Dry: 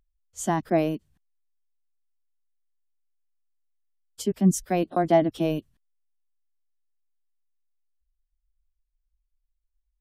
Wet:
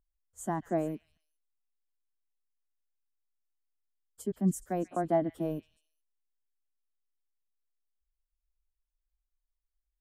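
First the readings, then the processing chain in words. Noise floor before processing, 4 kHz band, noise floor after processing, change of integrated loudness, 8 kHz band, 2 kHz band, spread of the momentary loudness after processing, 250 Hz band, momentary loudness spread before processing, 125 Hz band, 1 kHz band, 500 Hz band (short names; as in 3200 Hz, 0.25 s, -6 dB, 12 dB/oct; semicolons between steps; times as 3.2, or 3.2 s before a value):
-78 dBFS, under -15 dB, under -85 dBFS, -8.0 dB, -11.0 dB, -11.5 dB, 11 LU, -8.0 dB, 11 LU, -8.0 dB, -8.0 dB, -8.0 dB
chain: band shelf 3700 Hz -12.5 dB; on a send: delay with a stepping band-pass 0.14 s, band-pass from 2800 Hz, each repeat 0.7 oct, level -8.5 dB; on the sum: gain -8 dB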